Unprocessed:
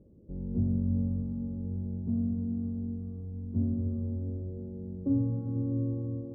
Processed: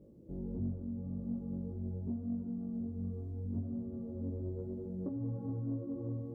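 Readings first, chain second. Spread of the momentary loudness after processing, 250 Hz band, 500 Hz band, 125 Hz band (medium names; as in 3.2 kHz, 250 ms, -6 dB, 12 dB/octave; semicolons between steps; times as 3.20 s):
3 LU, -6.5 dB, -1.5 dB, -8.0 dB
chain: bass shelf 140 Hz -10 dB; compression 12:1, threshold -37 dBFS, peak gain reduction 12 dB; chorus voices 2, 0.76 Hz, delay 20 ms, depth 4.6 ms; saturation -33 dBFS, distortion -26 dB; trim +6.5 dB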